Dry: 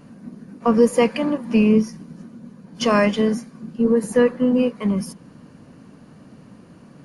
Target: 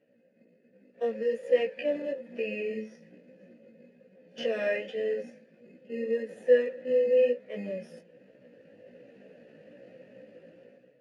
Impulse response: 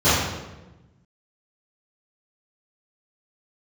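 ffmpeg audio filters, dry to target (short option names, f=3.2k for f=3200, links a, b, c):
-filter_complex "[0:a]acrossover=split=1200[a][b];[a]alimiter=limit=-13dB:level=0:latency=1:release=161[c];[c][b]amix=inputs=2:normalize=0,dynaudnorm=f=420:g=3:m=16dB,asplit=2[d][e];[e]acrusher=samples=19:mix=1:aa=0.000001,volume=-9dB[f];[d][f]amix=inputs=2:normalize=0,atempo=0.64,flanger=delay=15.5:depth=2.7:speed=1.2,asplit=3[g][h][i];[g]bandpass=f=530:t=q:w=8,volume=0dB[j];[h]bandpass=f=1.84k:t=q:w=8,volume=-6dB[k];[i]bandpass=f=2.48k:t=q:w=8,volume=-9dB[l];[j][k][l]amix=inputs=3:normalize=0,volume=-5dB"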